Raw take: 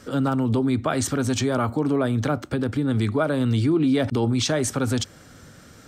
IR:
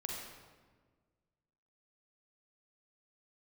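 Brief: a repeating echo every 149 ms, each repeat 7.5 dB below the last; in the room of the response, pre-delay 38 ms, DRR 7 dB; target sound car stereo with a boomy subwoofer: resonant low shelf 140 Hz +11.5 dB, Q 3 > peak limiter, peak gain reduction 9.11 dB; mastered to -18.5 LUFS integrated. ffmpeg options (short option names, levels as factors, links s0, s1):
-filter_complex "[0:a]aecho=1:1:149|298|447|596|745:0.422|0.177|0.0744|0.0312|0.0131,asplit=2[s0][s1];[1:a]atrim=start_sample=2205,adelay=38[s2];[s1][s2]afir=irnorm=-1:irlink=0,volume=0.422[s3];[s0][s3]amix=inputs=2:normalize=0,lowshelf=f=140:t=q:w=3:g=11.5,volume=0.891,alimiter=limit=0.316:level=0:latency=1"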